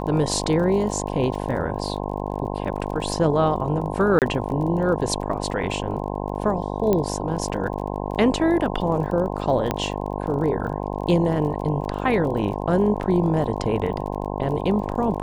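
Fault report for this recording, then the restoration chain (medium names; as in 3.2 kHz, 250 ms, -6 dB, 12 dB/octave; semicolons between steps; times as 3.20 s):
buzz 50 Hz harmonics 21 -28 dBFS
crackle 25 per s -32 dBFS
4.19–4.22 s: dropout 28 ms
6.93 s: pop -9 dBFS
9.71 s: pop -8 dBFS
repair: de-click; de-hum 50 Hz, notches 21; interpolate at 4.19 s, 28 ms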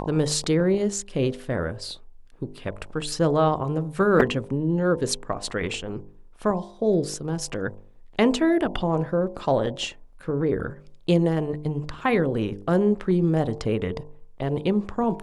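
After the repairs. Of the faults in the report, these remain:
6.93 s: pop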